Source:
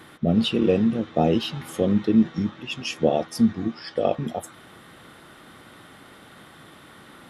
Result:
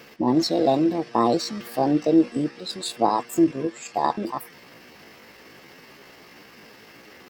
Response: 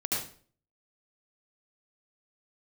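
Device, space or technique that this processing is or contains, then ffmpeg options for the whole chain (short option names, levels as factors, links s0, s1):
chipmunk voice: -af "asetrate=64194,aresample=44100,atempo=0.686977"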